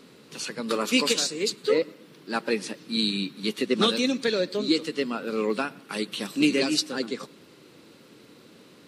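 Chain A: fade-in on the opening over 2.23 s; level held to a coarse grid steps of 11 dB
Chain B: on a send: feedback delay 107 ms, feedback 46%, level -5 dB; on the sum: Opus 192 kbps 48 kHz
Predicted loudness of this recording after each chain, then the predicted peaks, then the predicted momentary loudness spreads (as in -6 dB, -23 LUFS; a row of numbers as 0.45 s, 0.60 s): -31.5 LUFS, -25.0 LUFS; -10.5 dBFS, -8.5 dBFS; 13 LU, 11 LU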